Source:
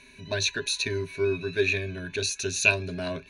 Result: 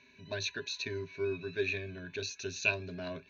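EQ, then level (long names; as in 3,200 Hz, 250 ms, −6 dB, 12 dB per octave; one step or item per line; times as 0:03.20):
high-pass filter 82 Hz
Butterworth low-pass 6,600 Hz 72 dB per octave
high-frequency loss of the air 59 metres
−8.0 dB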